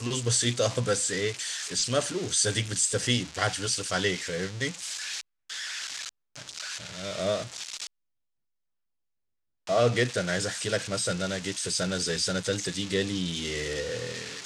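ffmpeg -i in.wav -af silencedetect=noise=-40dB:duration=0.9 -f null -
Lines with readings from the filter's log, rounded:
silence_start: 7.87
silence_end: 9.67 | silence_duration: 1.80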